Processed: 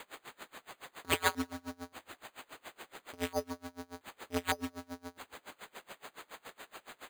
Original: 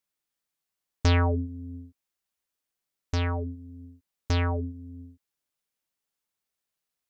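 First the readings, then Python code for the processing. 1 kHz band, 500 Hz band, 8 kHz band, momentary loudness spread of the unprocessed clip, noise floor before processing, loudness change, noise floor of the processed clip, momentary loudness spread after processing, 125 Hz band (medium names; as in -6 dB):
-2.5 dB, -4.5 dB, no reading, 21 LU, under -85 dBFS, -11.0 dB, -74 dBFS, 17 LU, -22.5 dB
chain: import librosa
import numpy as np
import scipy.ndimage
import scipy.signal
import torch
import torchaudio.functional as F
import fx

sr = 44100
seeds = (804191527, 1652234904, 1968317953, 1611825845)

p1 = x + 0.5 * 10.0 ** (-33.0 / 20.0) * np.sign(x)
p2 = fx.dynamic_eq(p1, sr, hz=1300.0, q=1.3, threshold_db=-48.0, ratio=4.0, max_db=5)
p3 = (np.mod(10.0 ** (19.0 / 20.0) * p2 + 1.0, 2.0) - 1.0) / 10.0 ** (19.0 / 20.0)
p4 = fx.bandpass_edges(p3, sr, low_hz=320.0, high_hz=2100.0)
p5 = p4 + fx.echo_feedback(p4, sr, ms=182, feedback_pct=39, wet_db=-16.0, dry=0)
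p6 = np.repeat(p5[::8], 8)[:len(p5)]
p7 = p6 * 10.0 ** (-29 * (0.5 - 0.5 * np.cos(2.0 * np.pi * 7.1 * np.arange(len(p6)) / sr)) / 20.0)
y = F.gain(torch.from_numpy(p7), 5.0).numpy()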